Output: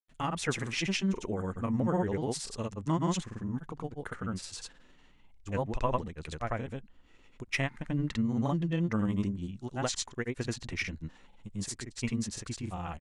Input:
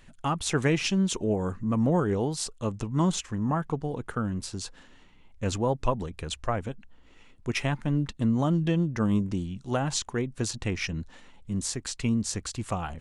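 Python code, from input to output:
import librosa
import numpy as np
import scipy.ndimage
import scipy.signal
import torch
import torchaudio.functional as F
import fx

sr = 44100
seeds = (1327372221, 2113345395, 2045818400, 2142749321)

y = fx.granulator(x, sr, seeds[0], grain_ms=100.0, per_s=20.0, spray_ms=100.0, spread_st=0)
y = fx.dynamic_eq(y, sr, hz=2000.0, q=2.3, threshold_db=-53.0, ratio=4.0, max_db=7)
y = y * librosa.db_to_amplitude(-4.0)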